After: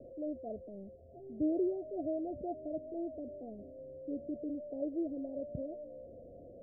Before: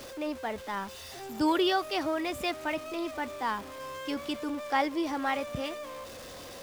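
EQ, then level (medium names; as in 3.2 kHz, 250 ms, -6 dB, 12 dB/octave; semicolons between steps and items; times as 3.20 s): Chebyshev low-pass 700 Hz, order 10; -4.5 dB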